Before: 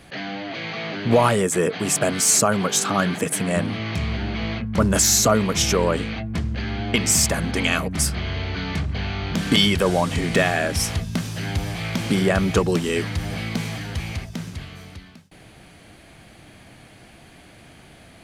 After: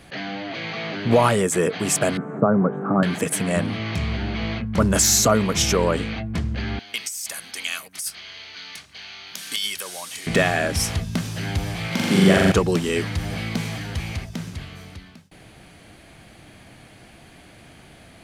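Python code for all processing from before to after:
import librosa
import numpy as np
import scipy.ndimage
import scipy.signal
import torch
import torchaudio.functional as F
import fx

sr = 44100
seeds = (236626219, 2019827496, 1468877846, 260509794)

y = fx.chain(x, sr, fx.ellip_bandpass(low_hz=130.0, high_hz=1400.0, order=3, stop_db=50),
    fx.tilt_shelf(db=7.0, hz=790.0), at=(2.17, 3.03))
y = fx.chain(y, sr, fx.differentiator(),
    fx.notch(hz=7500.0, q=15.0),
    fx.over_compress(threshold_db=-27.0, ratio=-1.0), at=(6.79, 10.27))
y = fx.chain(y, sr, fx.highpass(hz=120.0, slope=12),
    fx.room_flutter(wall_m=7.2, rt60_s=1.5), at=(11.87, 12.52))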